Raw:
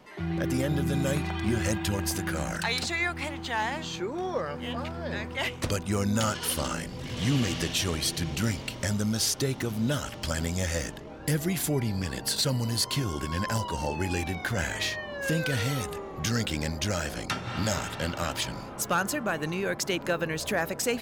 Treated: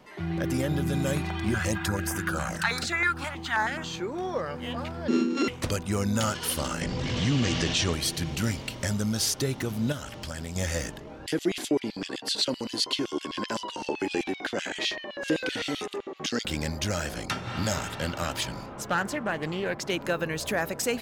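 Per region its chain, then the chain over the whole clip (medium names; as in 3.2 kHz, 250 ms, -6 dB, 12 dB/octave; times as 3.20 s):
1.54–3.84 s: high-pass 52 Hz + peaking EQ 1.4 kHz +11 dB 0.68 oct + step-sequenced notch 9.4 Hz 340–4200 Hz
5.08–5.48 s: sorted samples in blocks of 32 samples + Chebyshev band-pass 220–6700 Hz, order 4 + resonant low shelf 480 Hz +12 dB, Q 3
6.81–7.93 s: low-pass 7.2 kHz 24 dB/octave + level flattener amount 50%
9.92–10.56 s: compression 2:1, threshold -36 dBFS + loudspeaker Doppler distortion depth 0.11 ms
11.26–16.45 s: LFO high-pass square 7.8 Hz 310–3100 Hz + distance through air 62 m
18.66–19.90 s: treble shelf 6.5 kHz -10.5 dB + loudspeaker Doppler distortion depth 0.19 ms
whole clip: none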